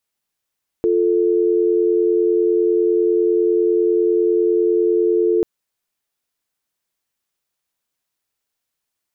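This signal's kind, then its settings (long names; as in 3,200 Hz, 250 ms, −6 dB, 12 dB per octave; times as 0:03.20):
call progress tone dial tone, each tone −16 dBFS 4.59 s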